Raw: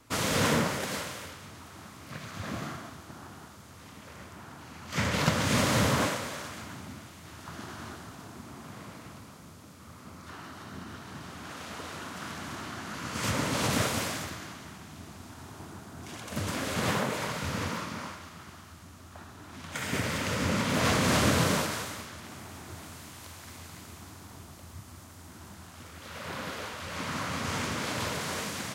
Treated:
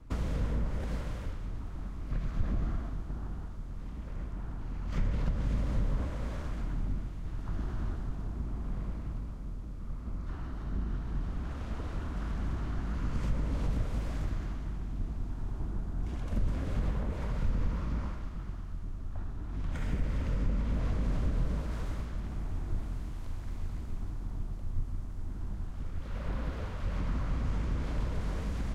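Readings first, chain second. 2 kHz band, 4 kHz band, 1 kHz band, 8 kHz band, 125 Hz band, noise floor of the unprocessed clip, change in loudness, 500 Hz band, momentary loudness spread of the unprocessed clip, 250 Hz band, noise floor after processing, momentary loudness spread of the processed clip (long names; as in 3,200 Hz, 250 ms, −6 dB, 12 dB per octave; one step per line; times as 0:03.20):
−15.5 dB, −19.5 dB, −12.5 dB, −22.5 dB, +1.0 dB, −50 dBFS, −6.0 dB, −10.5 dB, 22 LU, −5.5 dB, −40 dBFS, 9 LU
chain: sub-octave generator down 2 octaves, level +3 dB
downward compressor 10 to 1, threshold −33 dBFS, peak gain reduction 15.5 dB
spectral tilt −3.5 dB per octave
level −5.5 dB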